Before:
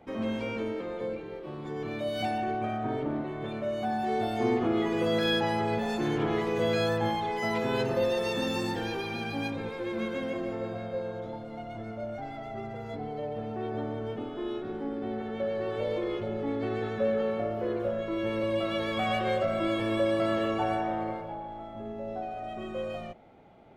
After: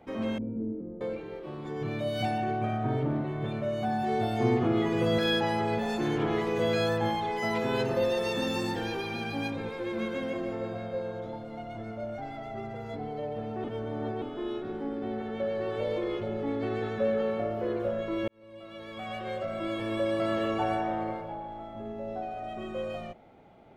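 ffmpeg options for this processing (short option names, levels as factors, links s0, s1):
-filter_complex "[0:a]asettb=1/sr,asplit=3[s0][s1][s2];[s0]atrim=end=0.384[s3];[s1]atrim=start=0.38:end=1.01,asetpts=PTS-STARTPTS,afade=t=in:d=0.004:c=qsin,afade=t=out:st=0.626:d=0.004:c=qsin,lowpass=f=250:t=q:w=1.6[s4];[s2]atrim=start=1.006[s5];[s3][s4]acrossfade=d=0.004:c1=hsin:c2=qsin[s6];[s6][s5]acrossfade=d=0.004:c1=qsin:c2=hsin,asettb=1/sr,asplit=3[s7][s8][s9];[s7]atrim=end=1.814[s10];[s8]atrim=start=1.81:end=5.18,asetpts=PTS-STARTPTS,afade=t=in:d=0.004:c=qsin,afade=t=out:st=3.366:d=0.004:c=qsin,equalizer=f=130:w=2.4:g=11.5[s11];[s9]atrim=start=5.176[s12];[s10][s11]acrossfade=d=0.004:c1=hsin:c2=qsin[s13];[s13][s12]acrossfade=d=0.004:c1=qsin:c2=hsin,asplit=4[s14][s15][s16][s17];[s14]atrim=end=13.642[s18];[s15]atrim=start=13.638:end=14.222,asetpts=PTS-STARTPTS,areverse[s19];[s16]atrim=start=14.218:end=18.28,asetpts=PTS-STARTPTS,afade=t=out:st=4.058:d=0.004:c=hsin[s20];[s17]atrim=start=18.28,asetpts=PTS-STARTPTS,afade=t=in:d=2.32[s21];[s18][s19]acrossfade=d=0.004:c1=hsin:c2=hsin[s22];[s20][s21]concat=n=2:v=0:a=1[s23];[s22][s23]acrossfade=d=0.004:c1=hsin:c2=hsin"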